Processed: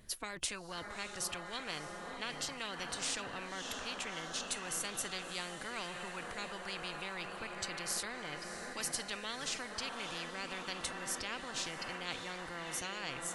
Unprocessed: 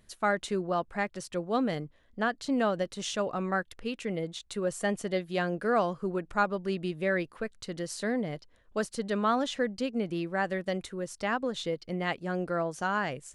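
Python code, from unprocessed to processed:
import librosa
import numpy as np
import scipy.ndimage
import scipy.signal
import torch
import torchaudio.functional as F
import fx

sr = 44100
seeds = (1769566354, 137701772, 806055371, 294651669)

y = fx.echo_diffused(x, sr, ms=628, feedback_pct=63, wet_db=-12.0)
y = fx.noise_reduce_blind(y, sr, reduce_db=13)
y = fx.spectral_comp(y, sr, ratio=10.0)
y = F.gain(torch.from_numpy(y), -5.5).numpy()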